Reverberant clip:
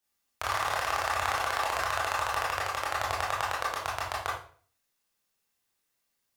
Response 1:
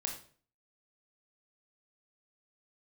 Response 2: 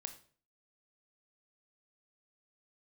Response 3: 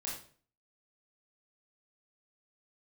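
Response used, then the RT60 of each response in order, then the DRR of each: 3; 0.45 s, 0.45 s, 0.45 s; 1.5 dB, 7.5 dB, -5.5 dB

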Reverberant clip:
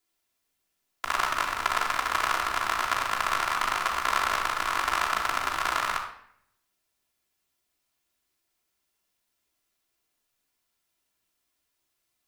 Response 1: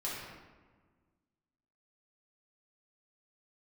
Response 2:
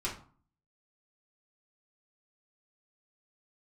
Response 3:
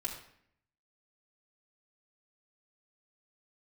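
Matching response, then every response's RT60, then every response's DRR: 3; 1.5 s, 0.45 s, 0.65 s; -7.0 dB, -5.5 dB, -4.0 dB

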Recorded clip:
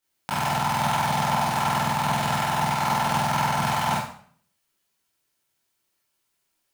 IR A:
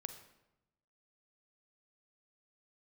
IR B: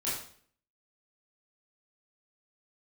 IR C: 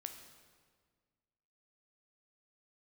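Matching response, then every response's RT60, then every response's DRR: B; 0.90 s, 0.55 s, 1.7 s; 8.5 dB, -9.5 dB, 5.5 dB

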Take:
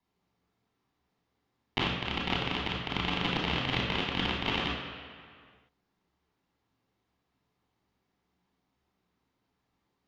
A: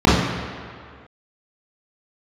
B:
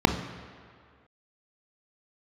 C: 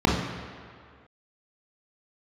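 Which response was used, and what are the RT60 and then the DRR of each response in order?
C; 2.1 s, 2.1 s, 2.1 s; -8.5 dB, 7.0 dB, -2.5 dB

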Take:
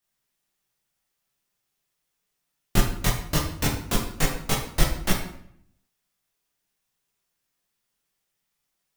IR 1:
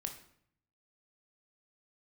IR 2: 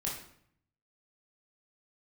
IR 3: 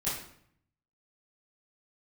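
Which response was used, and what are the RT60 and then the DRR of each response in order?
2; 0.65 s, 0.65 s, 0.65 s; 4.0 dB, -4.5 dB, -11.5 dB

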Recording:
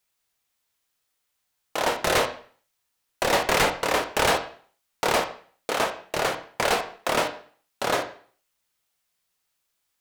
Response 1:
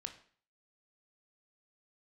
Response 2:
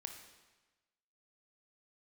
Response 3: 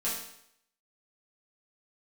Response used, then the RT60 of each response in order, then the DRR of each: 1; 0.45 s, 1.2 s, 0.70 s; 6.0 dB, 4.0 dB, -8.5 dB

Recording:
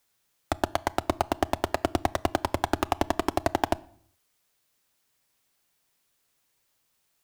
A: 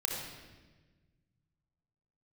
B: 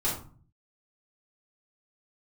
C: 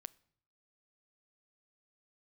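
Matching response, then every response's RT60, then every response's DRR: C; 1.3 s, 0.40 s, 0.65 s; -1.5 dB, -9.0 dB, 17.5 dB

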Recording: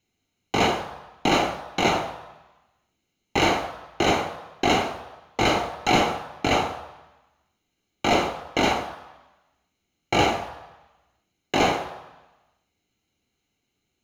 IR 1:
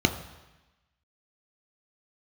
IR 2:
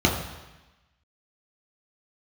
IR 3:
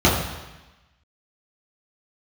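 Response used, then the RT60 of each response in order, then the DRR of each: 1; 1.1 s, 1.1 s, 1.1 s; 6.5 dB, -2.0 dB, -8.0 dB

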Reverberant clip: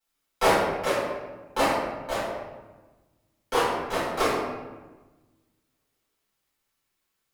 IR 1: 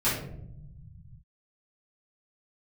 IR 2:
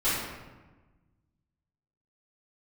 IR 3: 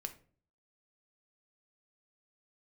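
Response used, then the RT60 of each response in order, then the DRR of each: 2; 0.80 s, 1.2 s, 0.45 s; -12.5 dB, -13.0 dB, 7.0 dB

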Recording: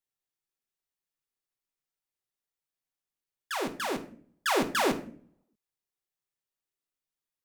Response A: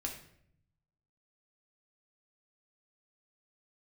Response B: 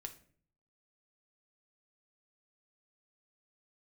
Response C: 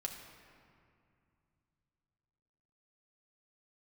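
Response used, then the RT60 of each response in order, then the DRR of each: B; 0.65 s, 0.50 s, 2.4 s; 0.0 dB, 5.0 dB, 1.5 dB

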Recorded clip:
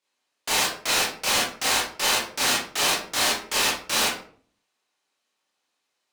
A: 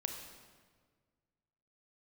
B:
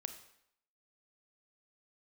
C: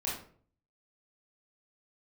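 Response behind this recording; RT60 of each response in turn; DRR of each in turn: C; 1.6 s, 0.75 s, 0.50 s; 3.5 dB, 8.0 dB, -6.5 dB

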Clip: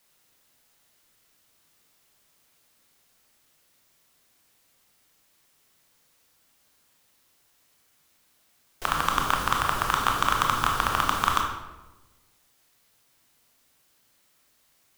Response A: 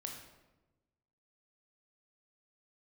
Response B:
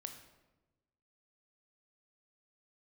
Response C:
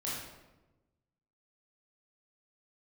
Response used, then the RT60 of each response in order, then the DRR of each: A; 1.1 s, 1.1 s, 1.1 s; 1.0 dB, 5.5 dB, -7.5 dB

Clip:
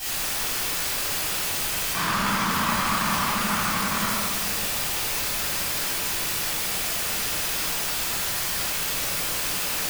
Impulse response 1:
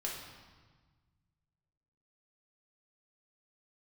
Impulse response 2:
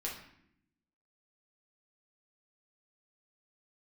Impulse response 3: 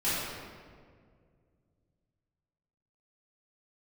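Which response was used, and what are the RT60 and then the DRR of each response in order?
3; 1.4 s, 0.70 s, 2.0 s; -3.0 dB, -4.0 dB, -12.5 dB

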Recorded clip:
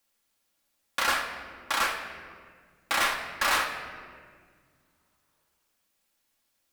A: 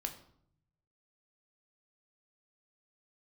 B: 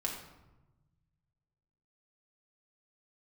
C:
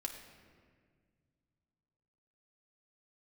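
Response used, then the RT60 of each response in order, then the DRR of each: C; 0.65 s, 1.1 s, 1.8 s; 4.5 dB, -2.0 dB, 1.5 dB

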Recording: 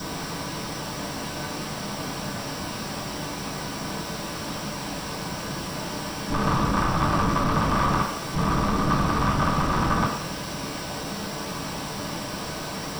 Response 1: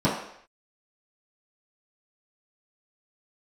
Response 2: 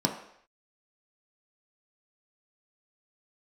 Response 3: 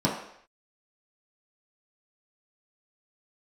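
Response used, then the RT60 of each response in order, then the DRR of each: 1; no single decay rate, no single decay rate, no single decay rate; -11.0 dB, 1.0 dB, -6.0 dB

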